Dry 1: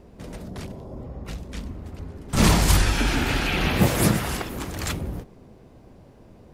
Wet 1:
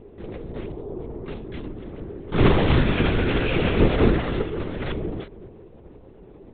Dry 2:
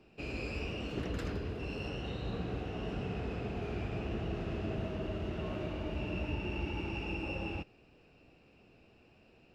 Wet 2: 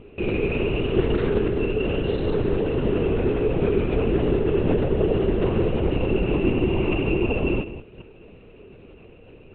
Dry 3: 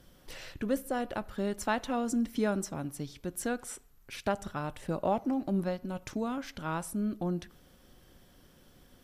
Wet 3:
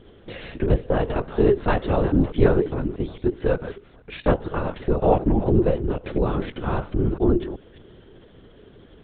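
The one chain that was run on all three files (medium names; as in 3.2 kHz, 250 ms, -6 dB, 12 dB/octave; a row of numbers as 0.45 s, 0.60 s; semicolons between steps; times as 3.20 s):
chunks repeated in reverse 211 ms, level -13 dB; peaking EQ 380 Hz +12.5 dB 0.7 oct; LPC vocoder at 8 kHz whisper; normalise loudness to -23 LUFS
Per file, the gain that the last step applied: -1.5 dB, +10.5 dB, +7.0 dB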